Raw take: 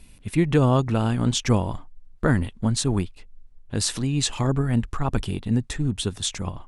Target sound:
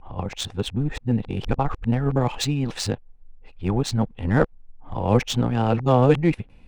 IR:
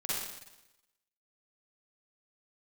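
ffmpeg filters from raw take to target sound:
-af "areverse,equalizer=frequency=500:width_type=o:width=0.33:gain=7,equalizer=frequency=800:width_type=o:width=0.33:gain=8,equalizer=frequency=2500:width_type=o:width=0.33:gain=4,adynamicsmooth=sensitivity=2:basefreq=2800"

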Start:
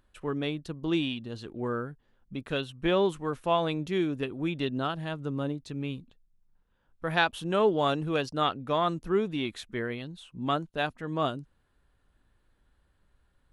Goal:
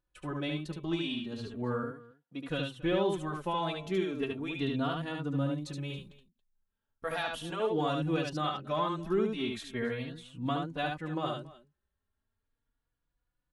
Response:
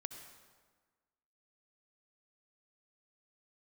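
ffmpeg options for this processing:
-filter_complex "[0:a]agate=range=-14dB:threshold=-56dB:ratio=16:detection=peak,asettb=1/sr,asplit=3[link_01][link_02][link_03];[link_01]atrim=end=1.834[link_04];[link_02]atrim=start=1.83:end=2.48,asetpts=PTS-STARTPTS,afade=type=in:duration=0.004:curve=qsin,afade=type=out:start_time=0.646:duration=0.004:curve=qsin,highpass=250[link_05];[link_03]atrim=start=2.476[link_06];[link_04][link_05]acrossfade=duration=0.004:curve1=hsin:curve2=qsin[link_07];[link_07][link_06]acrossfade=duration=0.004:curve1=qsin:curve2=hsin,asettb=1/sr,asplit=3[link_08][link_09][link_10];[link_08]atrim=end=5.514[link_11];[link_09]atrim=start=5.51:end=7.22,asetpts=PTS-STARTPTS,afade=type=in:duration=0.004:curve=qsin,afade=type=out:start_time=1.706:duration=0.004:curve=qsin,highshelf=frequency=4700:gain=7.5[link_12];[link_10]atrim=start=7.216[link_13];[link_11][link_12]acrossfade=duration=0.004:curve1=hsin:curve2=qsin[link_14];[link_14][link_13]acrossfade=duration=0.004:curve1=qsin:curve2=hsin,alimiter=limit=-19.5dB:level=0:latency=1:release=92,aecho=1:1:73|278:0.668|0.1,asplit=2[link_15][link_16];[link_16]adelay=3.6,afreqshift=0.37[link_17];[link_15][link_17]amix=inputs=2:normalize=1"

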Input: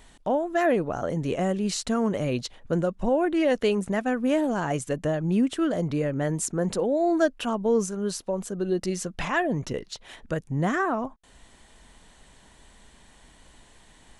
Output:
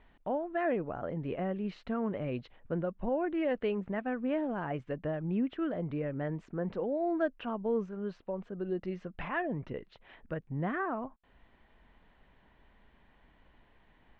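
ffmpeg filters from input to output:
ffmpeg -i in.wav -af "lowpass=frequency=2700:width=0.5412,lowpass=frequency=2700:width=1.3066,volume=-8.5dB" out.wav

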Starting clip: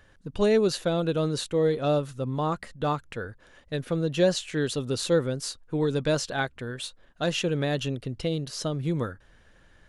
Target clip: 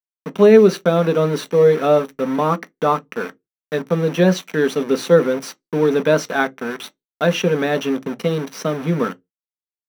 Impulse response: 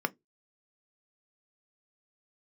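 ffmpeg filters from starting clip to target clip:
-filter_complex "[0:a]aeval=exprs='val(0)*gte(abs(val(0)),0.0188)':channel_layout=same[link_01];[1:a]atrim=start_sample=2205,asetrate=48510,aresample=44100[link_02];[link_01][link_02]afir=irnorm=-1:irlink=0,volume=3dB"

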